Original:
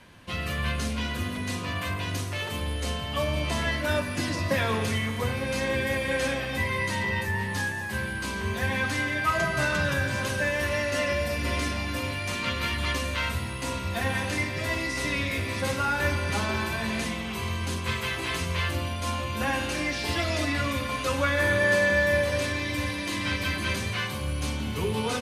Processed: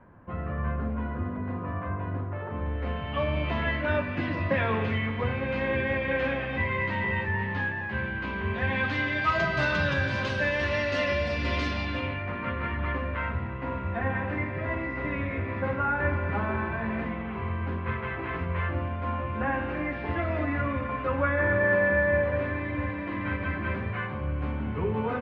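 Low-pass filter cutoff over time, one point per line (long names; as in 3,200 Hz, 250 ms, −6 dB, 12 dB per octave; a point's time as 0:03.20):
low-pass filter 24 dB per octave
0:02.43 1,400 Hz
0:03.19 2,700 Hz
0:08.49 2,700 Hz
0:09.29 4,500 Hz
0:11.82 4,500 Hz
0:12.30 1,900 Hz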